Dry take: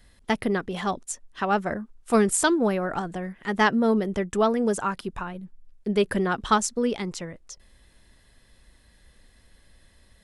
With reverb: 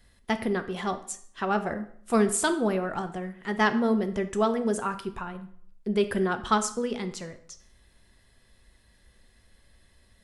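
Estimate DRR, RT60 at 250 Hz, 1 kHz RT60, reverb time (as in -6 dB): 7.5 dB, 0.65 s, 0.60 s, 0.60 s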